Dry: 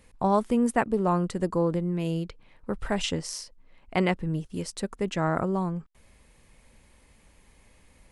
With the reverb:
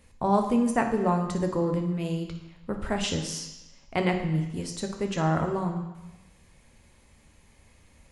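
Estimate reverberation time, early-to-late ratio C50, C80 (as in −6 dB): 1.0 s, 7.5 dB, 9.5 dB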